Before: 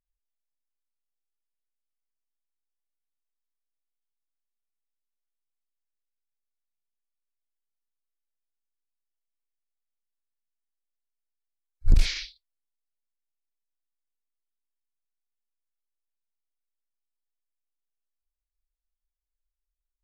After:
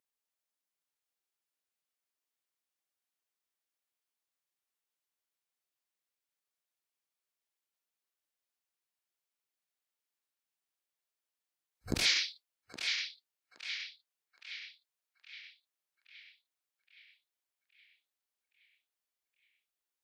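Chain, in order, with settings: HPF 270 Hz 12 dB/oct; narrowing echo 0.819 s, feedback 58%, band-pass 2400 Hz, level -4 dB; gain +4 dB

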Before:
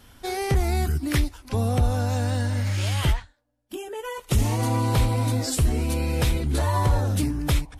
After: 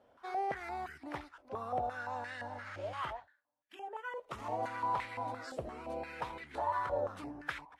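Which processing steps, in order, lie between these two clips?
in parallel at -10 dB: overloaded stage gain 21.5 dB; on the sum: stepped band-pass 5.8 Hz 590–1900 Hz; gain -1 dB

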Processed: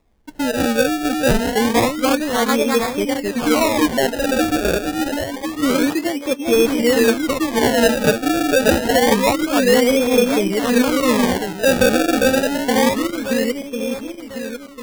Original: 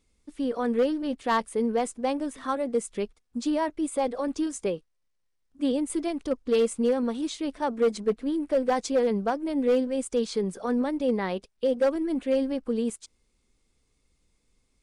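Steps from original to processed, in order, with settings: regenerating reverse delay 0.524 s, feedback 60%, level -2 dB; decimation with a swept rate 29×, swing 100% 0.27 Hz; 5.87–6.47 HPF 150 Hz 6 dB/oct; gain +7.5 dB

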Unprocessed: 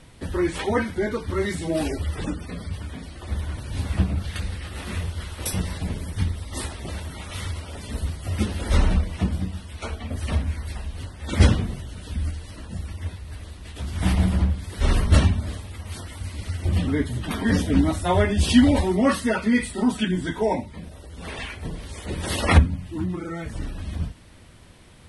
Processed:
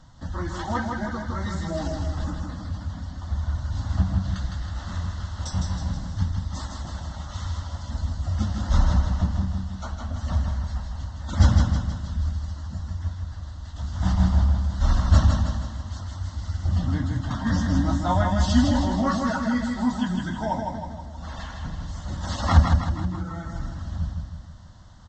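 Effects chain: fixed phaser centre 1000 Hz, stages 4; on a send: feedback echo 0.159 s, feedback 52%, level -4 dB; on the sum: downsampling 16000 Hz

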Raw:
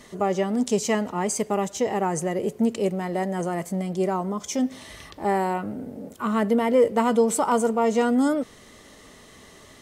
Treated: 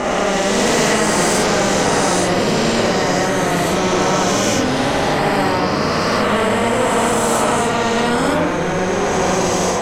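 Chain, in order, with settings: spectral swells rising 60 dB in 2.70 s; digital reverb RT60 0.44 s, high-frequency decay 0.35×, pre-delay 10 ms, DRR -4 dB; in parallel at -5 dB: overloaded stage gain 17.5 dB; on the sum: LPF 1300 Hz 6 dB/oct; echoes that change speed 0.423 s, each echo -4 st, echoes 3, each echo -6 dB; AGC; flange 1.8 Hz, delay 3.3 ms, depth 1.2 ms, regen -63%; spectral compressor 2:1

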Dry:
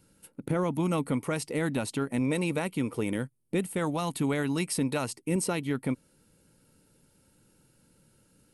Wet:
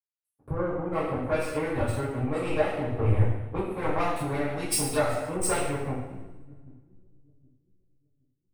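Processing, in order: spectral contrast raised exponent 1.5; bell 680 Hz +8 dB 0.65 oct; spectral delete 0.51–0.85, 650–5700 Hz; power-law curve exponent 2; on a send: split-band echo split 320 Hz, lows 0.769 s, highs 0.113 s, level -15 dB; on the sum: two-slope reverb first 0.89 s, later 2.4 s, from -17 dB, DRR -10 dB; compressor 2.5:1, threshold -32 dBFS, peak gain reduction 11 dB; resonant low shelf 120 Hz +12 dB, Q 3; three-band expander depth 100%; gain +4.5 dB

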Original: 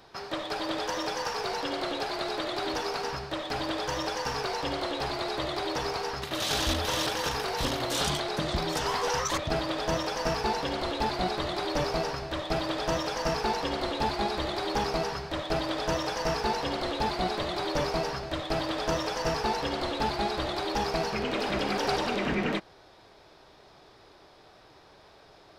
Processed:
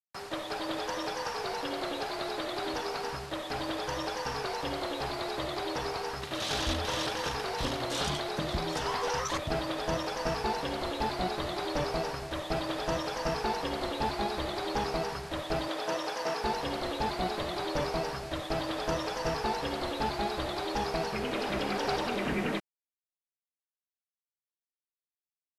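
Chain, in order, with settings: 15.68–16.43 HPF 290 Hz 12 dB/oct; bit-crush 7-bit; brick-wall FIR low-pass 13000 Hz; high shelf 7500 Hz -7.5 dB; gain -2.5 dB

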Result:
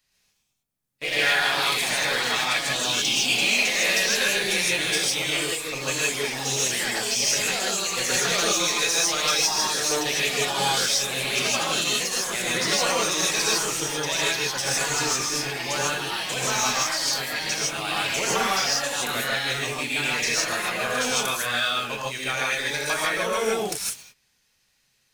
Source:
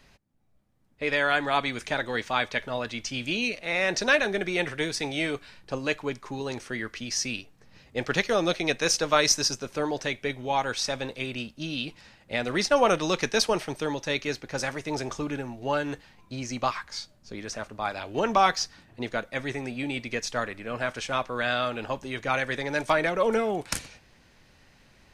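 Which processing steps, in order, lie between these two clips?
pre-emphasis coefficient 0.9; compressor 10:1, threshold -36 dBFS, peak gain reduction 17 dB; sample leveller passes 3; echoes that change speed 0.119 s, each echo +2 st, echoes 3; non-linear reverb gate 0.18 s rising, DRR -5.5 dB

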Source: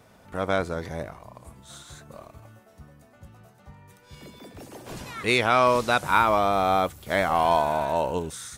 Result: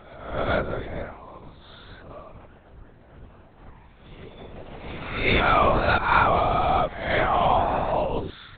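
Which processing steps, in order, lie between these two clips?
spectral swells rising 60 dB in 0.70 s; reverse echo 0.416 s -23 dB; LPC vocoder at 8 kHz whisper

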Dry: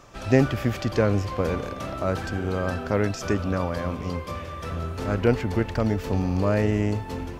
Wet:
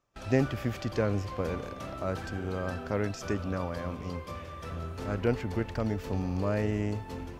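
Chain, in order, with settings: gate with hold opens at -27 dBFS; gain -7 dB

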